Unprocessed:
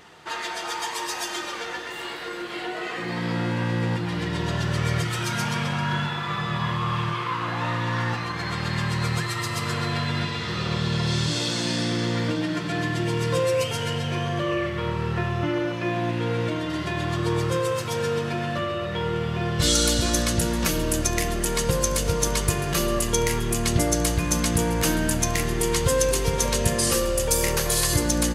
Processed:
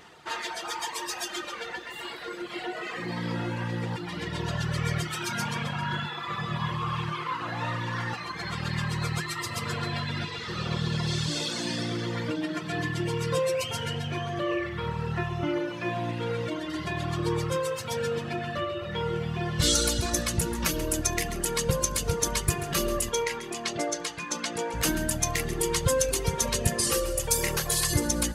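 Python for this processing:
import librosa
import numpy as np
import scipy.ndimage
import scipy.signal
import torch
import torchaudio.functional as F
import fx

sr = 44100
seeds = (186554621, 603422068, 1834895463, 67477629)

y = fx.dereverb_blind(x, sr, rt60_s=1.8)
y = fx.bandpass_edges(y, sr, low_hz=340.0, high_hz=5500.0, at=(23.09, 24.74))
y = fx.echo_feedback(y, sr, ms=135, feedback_pct=56, wet_db=-14)
y = y * 10.0 ** (-1.5 / 20.0)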